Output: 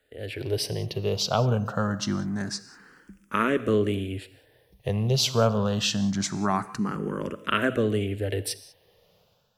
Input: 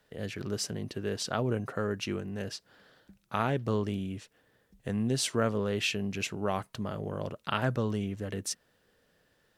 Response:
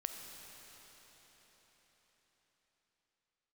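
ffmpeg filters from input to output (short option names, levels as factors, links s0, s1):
-filter_complex "[0:a]dynaudnorm=f=100:g=7:m=2.66,asplit=2[s0][s1];[1:a]atrim=start_sample=2205,afade=t=out:st=0.25:d=0.01,atrim=end_sample=11466[s2];[s1][s2]afir=irnorm=-1:irlink=0,volume=0.944[s3];[s0][s3]amix=inputs=2:normalize=0,asplit=2[s4][s5];[s5]afreqshift=0.25[s6];[s4][s6]amix=inputs=2:normalize=1,volume=0.668"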